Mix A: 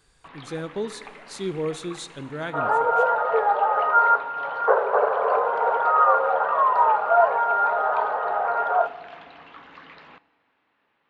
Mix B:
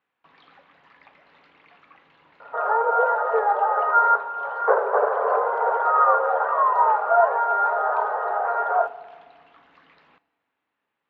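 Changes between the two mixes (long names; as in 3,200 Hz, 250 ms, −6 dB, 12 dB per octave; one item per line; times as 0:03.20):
speech: muted
first sound −10.0 dB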